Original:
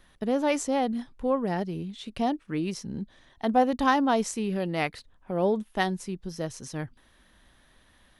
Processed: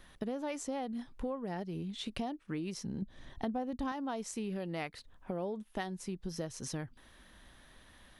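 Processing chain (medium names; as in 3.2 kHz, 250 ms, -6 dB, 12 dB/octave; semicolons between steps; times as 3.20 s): 3.02–3.92 s: bass shelf 330 Hz +11 dB; compression 6:1, threshold -37 dBFS, peak gain reduction 22 dB; trim +1.5 dB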